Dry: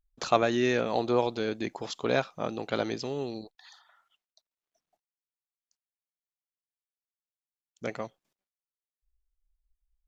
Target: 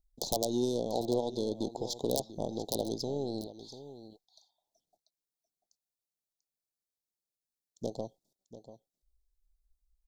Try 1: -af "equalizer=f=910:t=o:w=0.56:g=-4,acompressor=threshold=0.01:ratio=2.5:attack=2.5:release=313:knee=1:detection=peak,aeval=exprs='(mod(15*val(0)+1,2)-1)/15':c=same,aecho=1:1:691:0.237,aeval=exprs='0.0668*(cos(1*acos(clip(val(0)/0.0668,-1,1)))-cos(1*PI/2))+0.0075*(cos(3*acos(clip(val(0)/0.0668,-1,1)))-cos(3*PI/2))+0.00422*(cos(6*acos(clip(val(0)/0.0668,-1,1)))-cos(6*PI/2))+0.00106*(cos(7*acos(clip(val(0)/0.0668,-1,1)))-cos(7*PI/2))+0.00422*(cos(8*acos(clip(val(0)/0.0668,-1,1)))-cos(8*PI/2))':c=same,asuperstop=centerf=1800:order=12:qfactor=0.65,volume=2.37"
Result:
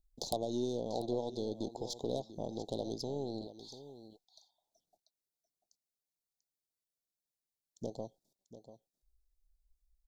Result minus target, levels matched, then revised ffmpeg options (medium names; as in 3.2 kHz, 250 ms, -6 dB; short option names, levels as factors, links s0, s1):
compression: peak gain reduction +3.5 dB
-af "equalizer=f=910:t=o:w=0.56:g=-4,acompressor=threshold=0.02:ratio=2.5:attack=2.5:release=313:knee=1:detection=peak,aeval=exprs='(mod(15*val(0)+1,2)-1)/15':c=same,aecho=1:1:691:0.237,aeval=exprs='0.0668*(cos(1*acos(clip(val(0)/0.0668,-1,1)))-cos(1*PI/2))+0.0075*(cos(3*acos(clip(val(0)/0.0668,-1,1)))-cos(3*PI/2))+0.00422*(cos(6*acos(clip(val(0)/0.0668,-1,1)))-cos(6*PI/2))+0.00106*(cos(7*acos(clip(val(0)/0.0668,-1,1)))-cos(7*PI/2))+0.00422*(cos(8*acos(clip(val(0)/0.0668,-1,1)))-cos(8*PI/2))':c=same,asuperstop=centerf=1800:order=12:qfactor=0.65,volume=2.37"